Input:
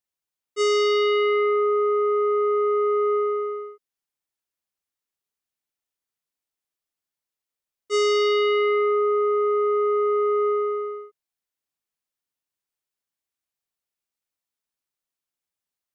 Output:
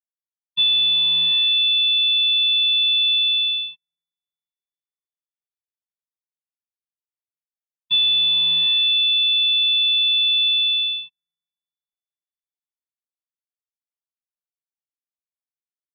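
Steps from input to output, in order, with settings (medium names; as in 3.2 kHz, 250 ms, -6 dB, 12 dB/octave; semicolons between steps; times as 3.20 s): crossover distortion -50.5 dBFS; compression 5:1, threshold -25 dBFS, peak gain reduction 5.5 dB; integer overflow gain 22 dB; dynamic bell 420 Hz, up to +3 dB, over -36 dBFS; frequency inversion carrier 3.9 kHz; on a send: feedback echo behind a low-pass 386 ms, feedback 50%, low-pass 550 Hz, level -20 dB; on the sum: gate -41 dBFS, range -21 dB; FFT filter 230 Hz 0 dB, 610 Hz +8 dB, 1.7 kHz -18 dB, 2.7 kHz +6 dB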